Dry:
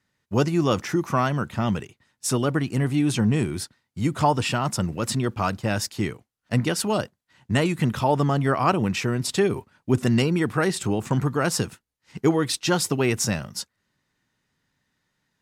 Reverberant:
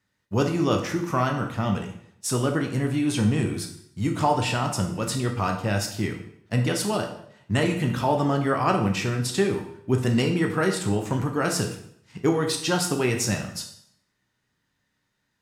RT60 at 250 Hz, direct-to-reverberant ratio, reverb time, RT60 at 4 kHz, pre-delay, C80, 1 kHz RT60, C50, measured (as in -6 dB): 0.65 s, 3.0 dB, 0.65 s, 0.60 s, 10 ms, 11.0 dB, 0.65 s, 7.5 dB